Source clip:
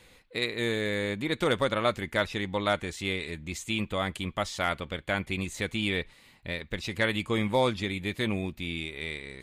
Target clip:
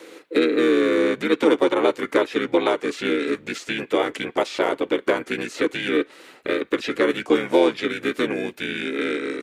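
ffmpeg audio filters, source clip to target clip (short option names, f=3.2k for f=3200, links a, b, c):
-filter_complex "[0:a]acrossover=split=1100|4800[a][b][c];[a]acompressor=threshold=-35dB:ratio=4[d];[b]acompressor=threshold=-37dB:ratio=4[e];[c]acompressor=threshold=-55dB:ratio=4[f];[d][e][f]amix=inputs=3:normalize=0,highpass=f=450:t=q:w=4.4,asplit=3[g][h][i];[h]asetrate=29433,aresample=44100,atempo=1.49831,volume=-1dB[j];[i]asetrate=37084,aresample=44100,atempo=1.18921,volume=-8dB[k];[g][j][k]amix=inputs=3:normalize=0,volume=7.5dB"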